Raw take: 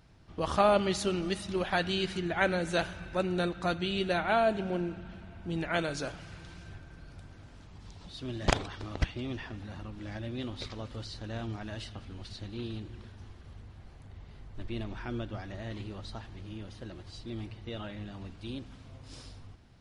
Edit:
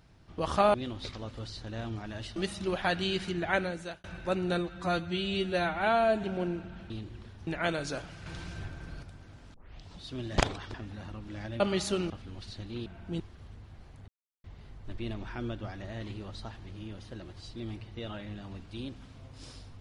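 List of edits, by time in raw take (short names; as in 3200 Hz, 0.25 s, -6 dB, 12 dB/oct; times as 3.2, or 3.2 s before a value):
0.74–1.24 swap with 10.31–11.93
2.37–2.92 fade out
3.46–4.56 stretch 1.5×
5.23–5.57 swap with 12.69–13.26
6.36–7.13 gain +6.5 dB
7.64 tape start 0.33 s
8.84–9.45 cut
14.14 insert silence 0.36 s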